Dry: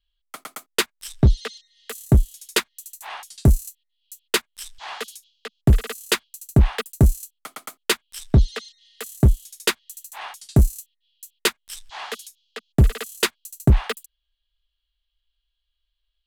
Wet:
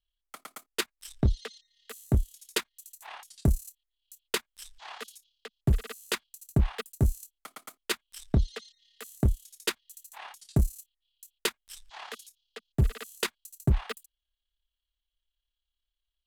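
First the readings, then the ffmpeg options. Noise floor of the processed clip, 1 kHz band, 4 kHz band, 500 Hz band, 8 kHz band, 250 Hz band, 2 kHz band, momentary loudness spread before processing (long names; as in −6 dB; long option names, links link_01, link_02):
below −85 dBFS, −9.5 dB, −9.5 dB, −9.5 dB, −9.5 dB, −9.0 dB, −9.5 dB, 18 LU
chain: -af "tremolo=f=35:d=0.519,volume=-7dB"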